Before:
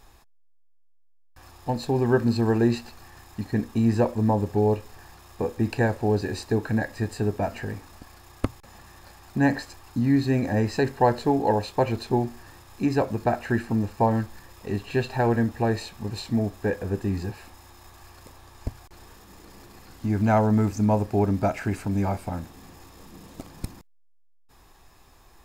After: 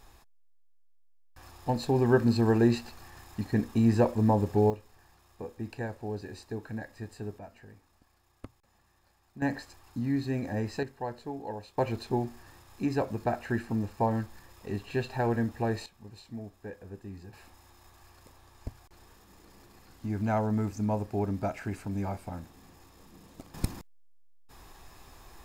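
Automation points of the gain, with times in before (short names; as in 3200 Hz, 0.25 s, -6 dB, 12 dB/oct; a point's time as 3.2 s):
-2 dB
from 4.7 s -13 dB
from 7.39 s -19.5 dB
from 9.42 s -8.5 dB
from 10.83 s -16 dB
from 11.78 s -6 dB
from 15.86 s -16.5 dB
from 17.33 s -8 dB
from 23.54 s +3 dB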